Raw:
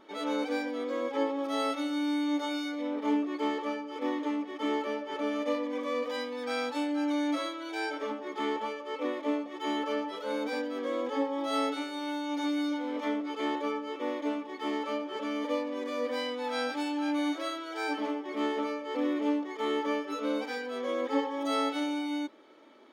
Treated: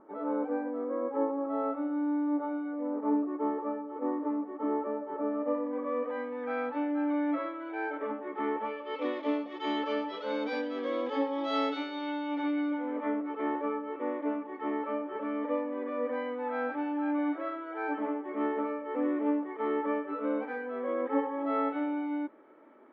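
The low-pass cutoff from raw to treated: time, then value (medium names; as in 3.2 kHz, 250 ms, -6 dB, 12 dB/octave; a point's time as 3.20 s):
low-pass 24 dB/octave
5.37 s 1.3 kHz
6.44 s 2 kHz
8.58 s 2 kHz
9.03 s 4.5 kHz
11.73 s 4.5 kHz
12.99 s 1.9 kHz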